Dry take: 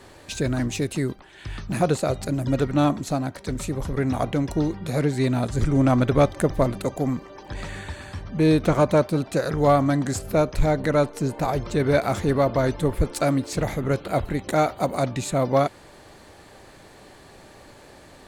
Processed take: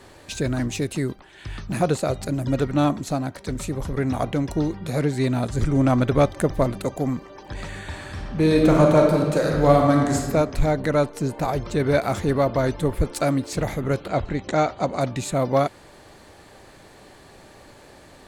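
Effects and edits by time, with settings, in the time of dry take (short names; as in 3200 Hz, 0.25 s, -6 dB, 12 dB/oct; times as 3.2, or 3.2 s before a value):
7.79–10.18 reverb throw, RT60 1.5 s, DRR 0 dB
14.08–15.01 steep low-pass 7400 Hz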